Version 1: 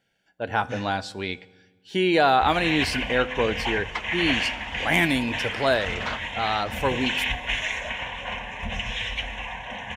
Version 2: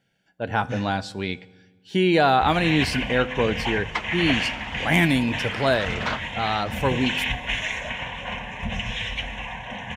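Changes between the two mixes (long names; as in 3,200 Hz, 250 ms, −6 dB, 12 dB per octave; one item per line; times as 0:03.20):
second sound +3.5 dB
master: add parametric band 150 Hz +7.5 dB 1.4 octaves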